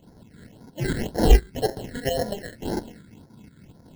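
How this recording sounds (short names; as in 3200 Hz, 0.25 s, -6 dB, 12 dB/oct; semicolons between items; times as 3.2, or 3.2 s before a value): aliases and images of a low sample rate 1200 Hz, jitter 0%; phasing stages 8, 1.9 Hz, lowest notch 780–2800 Hz; tremolo saw up 4.3 Hz, depth 60%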